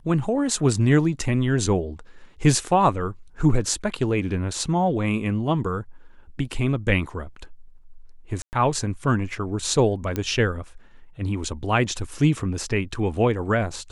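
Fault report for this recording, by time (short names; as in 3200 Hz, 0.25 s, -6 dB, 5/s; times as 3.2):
8.42–8.53 gap 0.109 s
10.16 pop -12 dBFS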